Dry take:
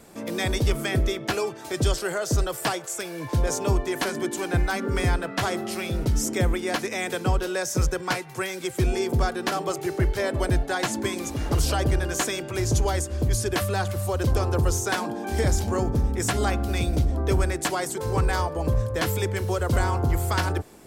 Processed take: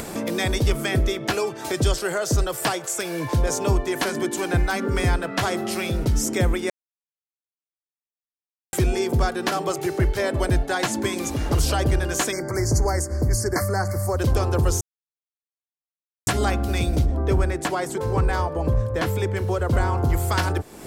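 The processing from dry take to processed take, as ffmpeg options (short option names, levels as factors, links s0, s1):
-filter_complex "[0:a]asplit=3[s0][s1][s2];[s0]afade=t=out:st=12.31:d=0.02[s3];[s1]asuperstop=centerf=3100:order=20:qfactor=1.5,afade=t=in:st=12.31:d=0.02,afade=t=out:st=14.17:d=0.02[s4];[s2]afade=t=in:st=14.17:d=0.02[s5];[s3][s4][s5]amix=inputs=3:normalize=0,asettb=1/sr,asplit=3[s6][s7][s8];[s6]atrim=end=17.064[s9];[s7]atrim=start=17.06:end=19.98,asetpts=PTS-STARTPTS,afade=t=in:d=0.004:c=qsin,afade=t=out:st=2.916:d=0.004:c=qsin,highshelf=f=3100:g=-9[s10];[s8]atrim=start=19.976[s11];[s9][s10]acrossfade=d=0.004:c1=hsin:c2=qsin[s12];[s12][s11]acrossfade=d=0.004:c1=qsin:c2=hsin,asplit=5[s13][s14][s15][s16][s17];[s13]atrim=end=6.7,asetpts=PTS-STARTPTS,afade=t=out:st=6.696:d=0.004:c=hsin[s18];[s14]atrim=start=6.7:end=8.73,asetpts=PTS-STARTPTS,volume=0[s19];[s15]atrim=start=8.73:end=14.81,asetpts=PTS-STARTPTS,afade=t=in:d=0.004:c=hsin,afade=t=out:st=6.076:d=0.004:c=hsin[s20];[s16]atrim=start=14.81:end=16.27,asetpts=PTS-STARTPTS,volume=0[s21];[s17]atrim=start=16.27,asetpts=PTS-STARTPTS,afade=t=in:d=0.004:c=hsin[s22];[s18][s19][s20][s21][s22]concat=n=5:v=0:a=1,acompressor=mode=upward:threshold=0.0708:ratio=2.5,volume=1.26"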